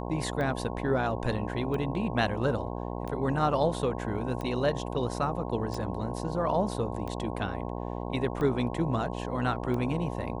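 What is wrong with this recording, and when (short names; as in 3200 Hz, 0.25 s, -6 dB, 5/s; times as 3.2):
buzz 60 Hz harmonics 18 -35 dBFS
tick 45 rpm -23 dBFS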